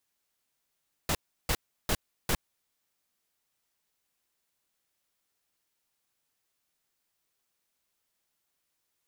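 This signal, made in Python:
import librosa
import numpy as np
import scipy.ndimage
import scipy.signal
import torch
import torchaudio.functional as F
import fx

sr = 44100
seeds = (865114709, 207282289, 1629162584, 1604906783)

y = fx.noise_burst(sr, seeds[0], colour='pink', on_s=0.06, off_s=0.34, bursts=4, level_db=-27.0)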